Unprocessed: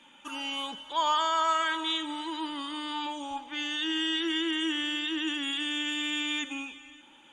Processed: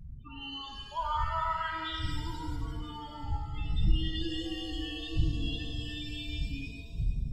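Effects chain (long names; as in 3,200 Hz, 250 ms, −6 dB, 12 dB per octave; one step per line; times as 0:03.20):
wind on the microphone 86 Hz −29 dBFS
spectral peaks only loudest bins 8
reverb with rising layers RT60 1.7 s, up +7 semitones, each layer −8 dB, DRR 1.5 dB
level −7.5 dB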